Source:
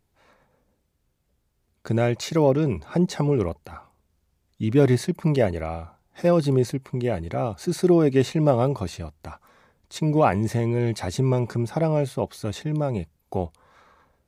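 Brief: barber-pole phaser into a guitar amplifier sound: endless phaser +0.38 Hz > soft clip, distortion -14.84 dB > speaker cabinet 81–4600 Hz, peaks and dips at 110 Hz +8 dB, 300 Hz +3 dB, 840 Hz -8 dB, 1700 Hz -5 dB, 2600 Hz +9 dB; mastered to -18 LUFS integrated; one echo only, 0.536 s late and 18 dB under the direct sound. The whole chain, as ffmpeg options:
-filter_complex "[0:a]aecho=1:1:536:0.126,asplit=2[a][b];[b]afreqshift=0.38[c];[a][c]amix=inputs=2:normalize=1,asoftclip=threshold=-16.5dB,highpass=81,equalizer=f=110:t=q:w=4:g=8,equalizer=f=300:t=q:w=4:g=3,equalizer=f=840:t=q:w=4:g=-8,equalizer=f=1.7k:t=q:w=4:g=-5,equalizer=f=2.6k:t=q:w=4:g=9,lowpass=f=4.6k:w=0.5412,lowpass=f=4.6k:w=1.3066,volume=9dB"

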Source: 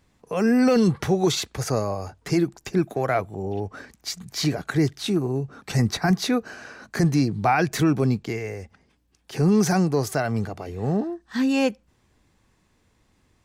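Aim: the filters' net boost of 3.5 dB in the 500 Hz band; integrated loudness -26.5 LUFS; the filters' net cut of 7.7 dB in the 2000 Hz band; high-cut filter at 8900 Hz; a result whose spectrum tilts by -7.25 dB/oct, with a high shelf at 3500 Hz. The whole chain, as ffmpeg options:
-af "lowpass=8.9k,equalizer=f=500:t=o:g=5,equalizer=f=2k:t=o:g=-9,highshelf=f=3.5k:g=-8.5,volume=-4dB"

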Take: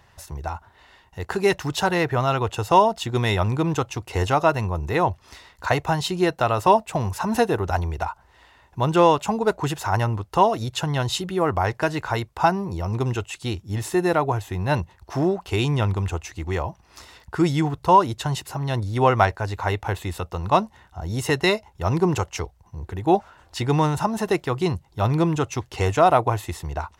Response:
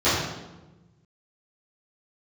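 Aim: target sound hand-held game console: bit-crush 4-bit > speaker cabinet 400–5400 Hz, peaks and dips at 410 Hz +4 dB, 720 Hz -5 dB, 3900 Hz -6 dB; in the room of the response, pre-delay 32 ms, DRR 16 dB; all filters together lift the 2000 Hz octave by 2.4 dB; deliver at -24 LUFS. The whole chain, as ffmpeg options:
-filter_complex "[0:a]equalizer=f=2k:t=o:g=3.5,asplit=2[a][b];[1:a]atrim=start_sample=2205,adelay=32[c];[b][c]afir=irnorm=-1:irlink=0,volume=-35.5dB[d];[a][d]amix=inputs=2:normalize=0,acrusher=bits=3:mix=0:aa=0.000001,highpass=400,equalizer=f=410:t=q:w=4:g=4,equalizer=f=720:t=q:w=4:g=-5,equalizer=f=3.9k:t=q:w=4:g=-6,lowpass=f=5.4k:w=0.5412,lowpass=f=5.4k:w=1.3066"

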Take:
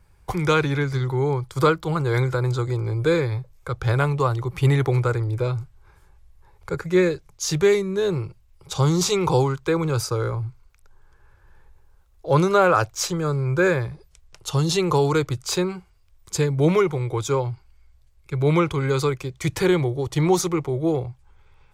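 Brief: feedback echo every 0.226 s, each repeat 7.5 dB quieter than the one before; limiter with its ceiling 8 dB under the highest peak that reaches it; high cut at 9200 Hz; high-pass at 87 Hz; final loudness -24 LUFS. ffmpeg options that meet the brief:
-af "highpass=87,lowpass=9.2k,alimiter=limit=-13.5dB:level=0:latency=1,aecho=1:1:226|452|678|904|1130:0.422|0.177|0.0744|0.0312|0.0131"

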